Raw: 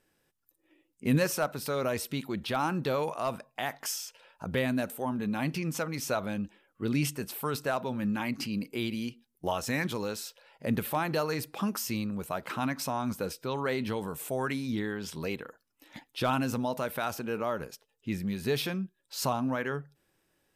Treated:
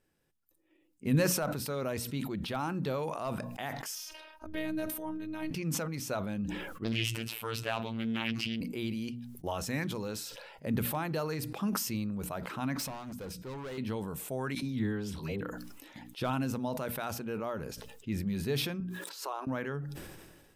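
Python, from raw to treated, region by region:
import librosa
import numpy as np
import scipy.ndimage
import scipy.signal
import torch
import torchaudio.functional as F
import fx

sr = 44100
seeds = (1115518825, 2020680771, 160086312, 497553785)

y = fx.chain(x, sr, fx.peak_eq(hz=7700.0, db=-11.0, octaves=0.21),
    fx.robotise(hz=313.0), at=(3.95, 5.51))
y = fx.chain(y, sr, fx.robotise(hz=113.0),
    fx.peak_eq(hz=2700.0, db=14.0, octaves=1.1),
    fx.doppler_dist(depth_ms=0.55), at=(6.84, 8.61))
y = fx.chain(y, sr, fx.hum_notches(base_hz=50, count=5),
    fx.clip_hard(threshold_db=-34.0),
    fx.upward_expand(threshold_db=-58.0, expansion=1.5), at=(12.77, 13.78))
y = fx.chain(y, sr, fx.low_shelf(hz=130.0, db=6.5),
    fx.dispersion(late='lows', ms=74.0, hz=830.0), at=(14.55, 15.41))
y = fx.chain(y, sr, fx.cheby_ripple_highpass(hz=300.0, ripple_db=6),
    fx.pre_swell(db_per_s=91.0), at=(18.8, 19.47))
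y = fx.low_shelf(y, sr, hz=280.0, db=7.5)
y = fx.hum_notches(y, sr, base_hz=60, count=5)
y = fx.sustainer(y, sr, db_per_s=37.0)
y = y * 10.0 ** (-6.5 / 20.0)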